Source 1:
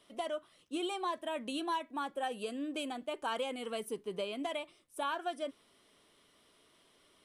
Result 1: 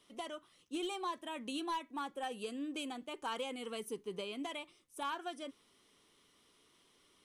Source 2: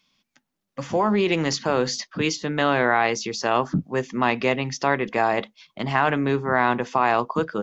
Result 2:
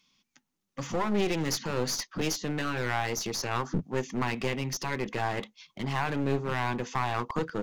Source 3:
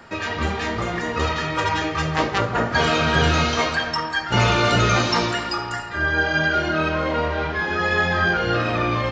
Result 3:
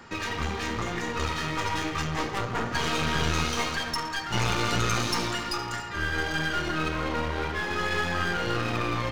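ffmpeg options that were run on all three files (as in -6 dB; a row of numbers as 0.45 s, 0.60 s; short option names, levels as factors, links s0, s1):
-filter_complex "[0:a]equalizer=f=630:t=o:w=0.33:g=-9,equalizer=f=1600:t=o:w=0.33:g=-3,equalizer=f=6300:t=o:w=0.33:g=5,asplit=2[s0][s1];[s1]alimiter=limit=0.168:level=0:latency=1:release=311,volume=0.794[s2];[s0][s2]amix=inputs=2:normalize=0,aeval=exprs='clip(val(0),-1,0.0473)':c=same,volume=0.447"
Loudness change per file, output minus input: -3.5 LU, -8.0 LU, -7.5 LU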